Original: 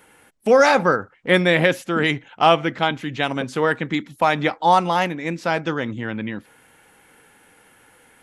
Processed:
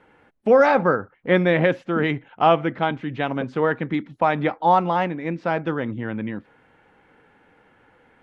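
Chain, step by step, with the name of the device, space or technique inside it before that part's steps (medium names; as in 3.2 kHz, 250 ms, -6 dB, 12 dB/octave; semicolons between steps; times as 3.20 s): phone in a pocket (low-pass 3.8 kHz 12 dB/octave; treble shelf 2.3 kHz -11.5 dB)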